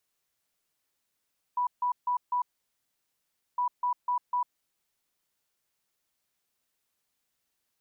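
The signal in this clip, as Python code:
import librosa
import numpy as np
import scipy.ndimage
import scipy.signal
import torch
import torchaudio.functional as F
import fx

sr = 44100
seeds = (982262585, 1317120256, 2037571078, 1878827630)

y = fx.beep_pattern(sr, wave='sine', hz=984.0, on_s=0.1, off_s=0.15, beeps=4, pause_s=1.16, groups=2, level_db=-24.5)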